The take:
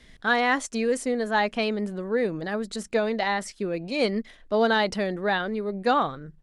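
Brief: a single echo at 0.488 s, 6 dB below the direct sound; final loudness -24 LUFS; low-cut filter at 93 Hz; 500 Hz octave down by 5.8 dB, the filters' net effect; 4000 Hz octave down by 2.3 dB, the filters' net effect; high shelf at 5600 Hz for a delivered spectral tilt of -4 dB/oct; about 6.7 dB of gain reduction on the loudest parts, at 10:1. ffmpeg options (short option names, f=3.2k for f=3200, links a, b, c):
-af "highpass=93,equalizer=f=500:t=o:g=-7,equalizer=f=4k:t=o:g=-5,highshelf=f=5.6k:g=6.5,acompressor=threshold=-26dB:ratio=10,aecho=1:1:488:0.501,volume=7dB"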